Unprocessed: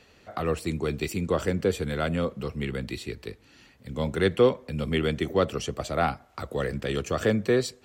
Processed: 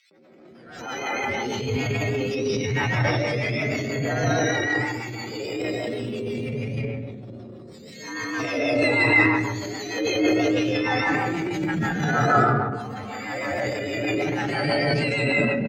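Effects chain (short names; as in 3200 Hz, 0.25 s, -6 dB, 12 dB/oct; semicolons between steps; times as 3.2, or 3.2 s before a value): spectrum mirrored in octaves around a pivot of 1000 Hz; time stretch by phase-locked vocoder 2×; running mean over 4 samples; high shelf 2800 Hz -11 dB; three bands offset in time highs, mids, lows 0.11/0.51 s, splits 210/2600 Hz; reverb RT60 1.2 s, pre-delay 0.11 s, DRR -4.5 dB; rotary speaker horn 6.3 Hz; transient shaper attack -8 dB, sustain +7 dB; backwards sustainer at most 59 dB/s; gain +8.5 dB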